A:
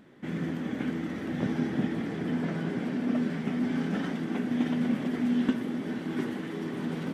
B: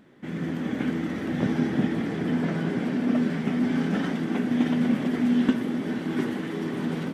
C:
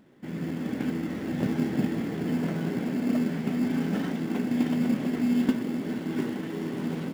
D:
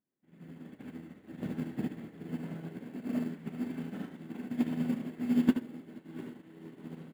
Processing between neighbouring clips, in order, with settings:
automatic gain control gain up to 4.5 dB
notch filter 1,200 Hz, Q 29; in parallel at −8 dB: sample-rate reduction 2,400 Hz, jitter 0%; on the sum: level −5 dB
parametric band 5,400 Hz −9 dB 0.46 octaves; on a send: ambience of single reflections 31 ms −12.5 dB, 74 ms −4 dB; on the sum: expander for the loud parts 2.5 to 1, over −39 dBFS; level −2 dB

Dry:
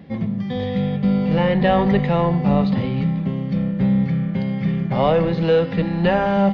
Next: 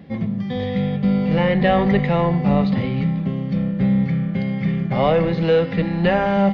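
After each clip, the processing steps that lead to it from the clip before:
notch filter 930 Hz, Q 16
dynamic equaliser 2,100 Hz, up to +5 dB, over −46 dBFS, Q 4.7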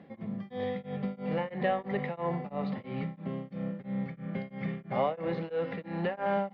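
downward compressor, threshold −17 dBFS, peak gain reduction 6 dB
resonant band-pass 830 Hz, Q 0.52
tremolo along a rectified sine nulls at 3 Hz
level −4 dB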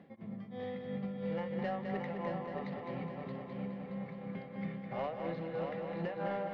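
reversed playback
upward compression, threshold −39 dBFS
reversed playback
soft clipping −23 dBFS, distortion −18 dB
echo machine with several playback heads 208 ms, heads first and third, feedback 62%, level −6 dB
level −7 dB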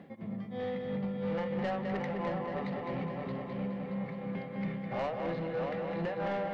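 soft clipping −34 dBFS, distortion −15 dB
on a send at −18 dB: convolution reverb RT60 0.95 s, pre-delay 3 ms
on the sum: level +6 dB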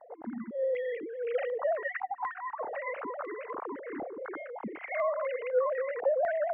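three sine waves on the formant tracks
time-frequency box erased 0:01.88–0:02.60, 320–720 Hz
low-pass on a step sequencer 4 Hz 800–2,500 Hz

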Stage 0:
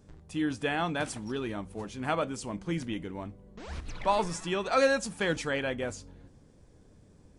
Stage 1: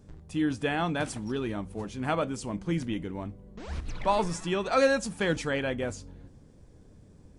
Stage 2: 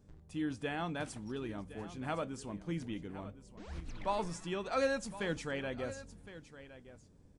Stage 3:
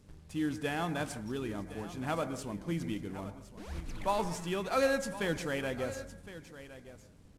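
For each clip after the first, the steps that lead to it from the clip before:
low-shelf EQ 370 Hz +4.5 dB
single-tap delay 1,063 ms −15 dB; level −9 dB
variable-slope delta modulation 64 kbit/s; on a send at −11 dB: linear-phase brick-wall low-pass 2,400 Hz + convolution reverb RT60 0.45 s, pre-delay 115 ms; on the sum: level +3.5 dB

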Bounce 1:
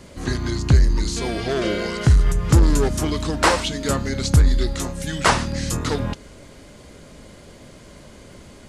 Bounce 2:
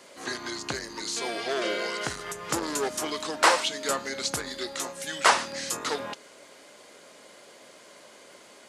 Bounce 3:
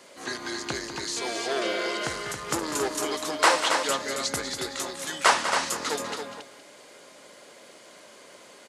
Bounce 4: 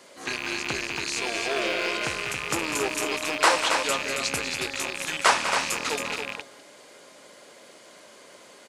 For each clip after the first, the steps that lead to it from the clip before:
high-pass filter 510 Hz 12 dB per octave; level −2 dB
multi-tap delay 196/274/466 ms −10/−6.5/−18.5 dB
loose part that buzzes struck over −48 dBFS, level −18 dBFS

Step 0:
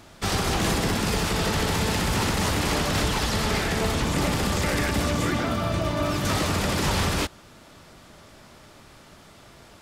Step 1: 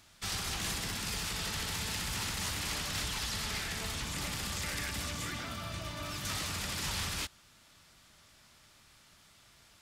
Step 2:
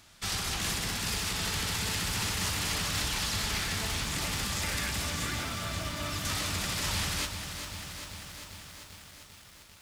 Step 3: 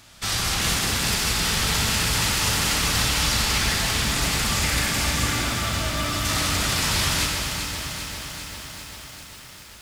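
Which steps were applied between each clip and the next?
guitar amp tone stack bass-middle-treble 5-5-5
feedback echo at a low word length 395 ms, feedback 80%, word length 9 bits, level −8.5 dB; level +3.5 dB
dense smooth reverb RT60 2.7 s, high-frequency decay 1×, DRR 0 dB; level +6.5 dB

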